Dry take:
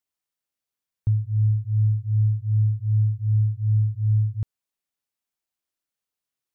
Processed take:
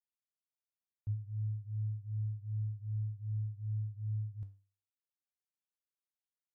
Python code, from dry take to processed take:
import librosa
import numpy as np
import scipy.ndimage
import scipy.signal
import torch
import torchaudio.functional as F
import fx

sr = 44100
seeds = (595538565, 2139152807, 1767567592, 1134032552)

y = fx.comb_fb(x, sr, f0_hz=99.0, decay_s=0.37, harmonics='odd', damping=0.0, mix_pct=80)
y = F.gain(torch.from_numpy(y), -8.5).numpy()